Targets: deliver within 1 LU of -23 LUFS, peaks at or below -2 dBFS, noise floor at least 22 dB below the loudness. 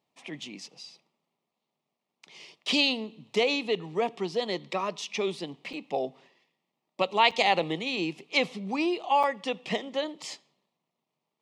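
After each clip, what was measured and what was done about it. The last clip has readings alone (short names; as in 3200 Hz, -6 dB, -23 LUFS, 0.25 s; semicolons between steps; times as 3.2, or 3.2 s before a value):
dropouts 3; longest dropout 5.6 ms; loudness -28.5 LUFS; peak -9.0 dBFS; loudness target -23.0 LUFS
-> interpolate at 5.73/7.31/9.23, 5.6 ms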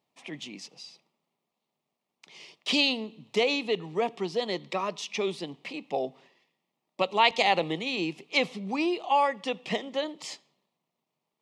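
dropouts 0; loudness -28.5 LUFS; peak -9.0 dBFS; loudness target -23.0 LUFS
-> gain +5.5 dB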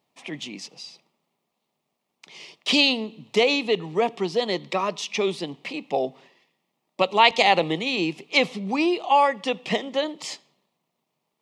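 loudness -23.0 LUFS; peak -3.5 dBFS; noise floor -79 dBFS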